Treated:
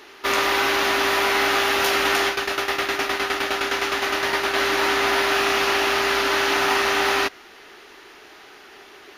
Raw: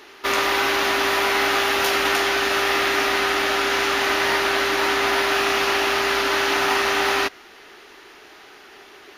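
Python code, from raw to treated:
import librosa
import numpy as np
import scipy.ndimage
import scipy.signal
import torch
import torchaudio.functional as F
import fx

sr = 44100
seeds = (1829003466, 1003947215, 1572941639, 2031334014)

y = fx.tremolo_shape(x, sr, shape='saw_down', hz=9.7, depth_pct=fx.line((2.28, 85.0), (4.54, 50.0)), at=(2.28, 4.54), fade=0.02)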